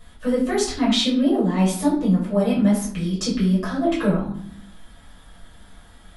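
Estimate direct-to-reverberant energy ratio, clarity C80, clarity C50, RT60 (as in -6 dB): -9.0 dB, 9.0 dB, 5.0 dB, 0.60 s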